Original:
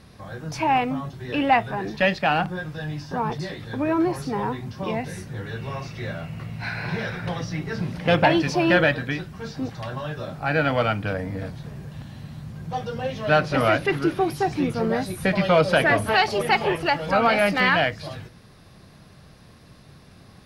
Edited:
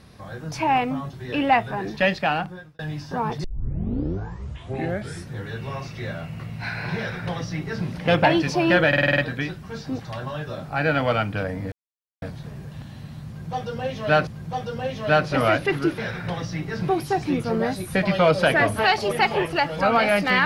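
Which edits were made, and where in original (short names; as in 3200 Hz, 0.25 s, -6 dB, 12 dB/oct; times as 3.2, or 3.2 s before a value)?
2.2–2.79 fade out
3.44 tape start 1.88 s
6.97–7.87 copy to 14.18
8.88 stutter 0.05 s, 7 plays
11.42 insert silence 0.50 s
12.47–13.47 loop, 2 plays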